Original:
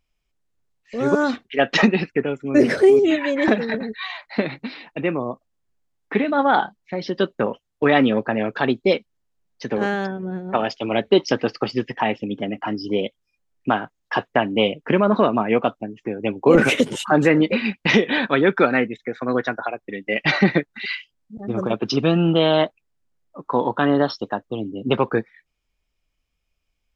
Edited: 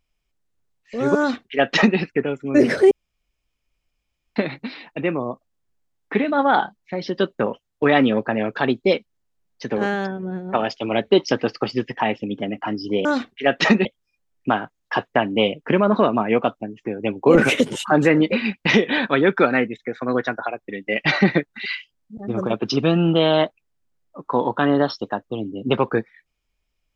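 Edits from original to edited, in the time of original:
1.18–1.98 s: copy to 13.05 s
2.91–4.36 s: room tone

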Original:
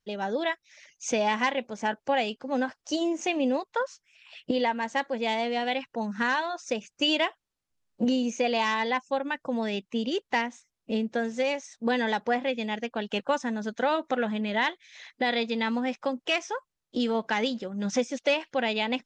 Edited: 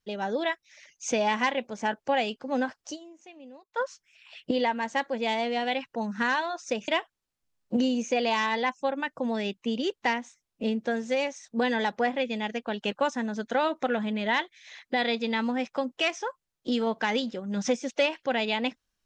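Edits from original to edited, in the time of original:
2.90–3.79 s: dip -21.5 dB, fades 0.34 s exponential
6.88–7.16 s: delete

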